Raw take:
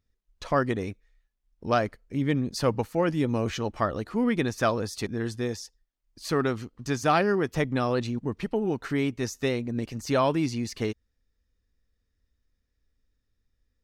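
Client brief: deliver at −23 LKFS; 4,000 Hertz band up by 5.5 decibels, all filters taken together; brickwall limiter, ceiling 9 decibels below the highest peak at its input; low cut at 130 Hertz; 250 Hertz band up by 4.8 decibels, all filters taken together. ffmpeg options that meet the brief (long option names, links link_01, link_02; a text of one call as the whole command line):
ffmpeg -i in.wav -af "highpass=130,equalizer=frequency=250:width_type=o:gain=6,equalizer=frequency=4000:width_type=o:gain=7,volume=4dB,alimiter=limit=-11dB:level=0:latency=1" out.wav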